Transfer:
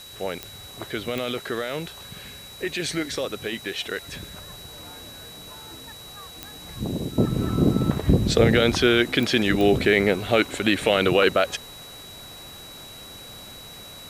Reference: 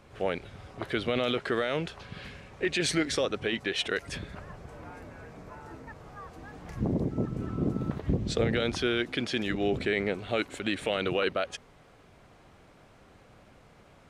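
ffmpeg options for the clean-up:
ffmpeg -i in.wav -af "adeclick=threshold=4,bandreject=frequency=3900:width=30,afwtdn=0.005,asetnsamples=nb_out_samples=441:pad=0,asendcmd='7.18 volume volume -9.5dB',volume=0dB" out.wav

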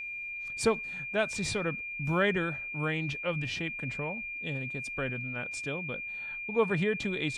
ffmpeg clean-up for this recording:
ffmpeg -i in.wav -af "bandreject=frequency=2400:width=30" out.wav

